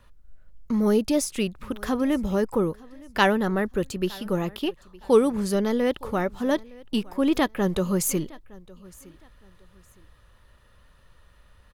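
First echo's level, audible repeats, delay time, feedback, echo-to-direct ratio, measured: -23.0 dB, 2, 913 ms, 28%, -22.5 dB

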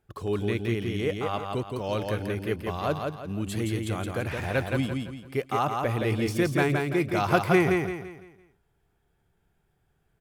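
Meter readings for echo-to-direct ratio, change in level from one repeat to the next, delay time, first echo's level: -3.5 dB, -8.5 dB, 169 ms, -4.0 dB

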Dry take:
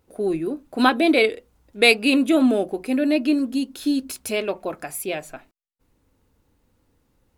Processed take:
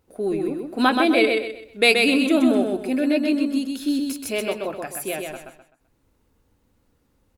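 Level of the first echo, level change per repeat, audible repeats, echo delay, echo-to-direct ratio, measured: -4.0 dB, -10.0 dB, 4, 128 ms, -3.5 dB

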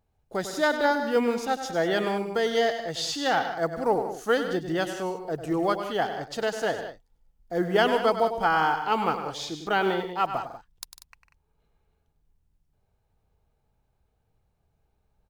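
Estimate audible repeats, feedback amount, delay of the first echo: 3, no regular repeats, 100 ms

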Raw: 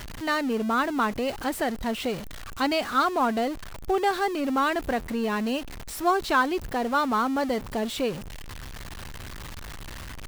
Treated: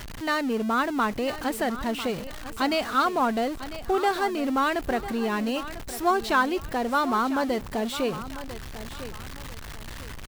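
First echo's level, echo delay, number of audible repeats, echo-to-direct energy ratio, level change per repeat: -13.5 dB, 998 ms, 2, -13.0 dB, -10.0 dB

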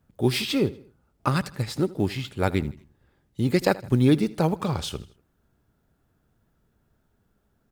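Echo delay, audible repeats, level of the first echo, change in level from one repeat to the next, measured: 80 ms, 3, -19.5 dB, -7.0 dB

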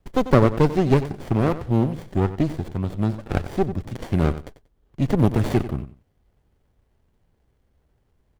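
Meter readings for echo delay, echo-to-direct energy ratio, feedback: 93 ms, -13.5 dB, 19%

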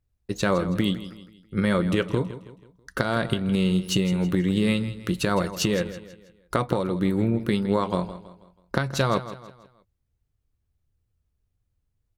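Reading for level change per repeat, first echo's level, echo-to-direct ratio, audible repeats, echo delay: -8.0 dB, -14.0 dB, -13.0 dB, 3, 162 ms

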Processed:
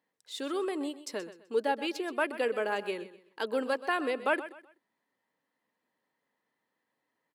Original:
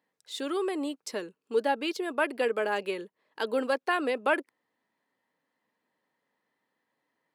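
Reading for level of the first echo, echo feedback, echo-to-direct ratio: -14.5 dB, 31%, -14.0 dB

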